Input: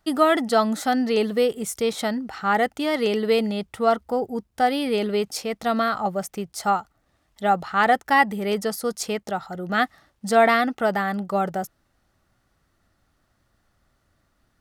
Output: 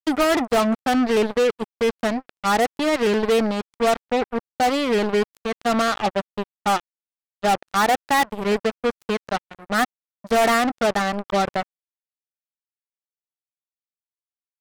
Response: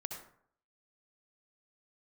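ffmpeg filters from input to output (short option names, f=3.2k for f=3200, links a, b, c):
-af "aemphasis=mode=reproduction:type=75kf,asoftclip=type=hard:threshold=-20dB,acrusher=bits=3:mix=0:aa=0.5,volume=2.5dB"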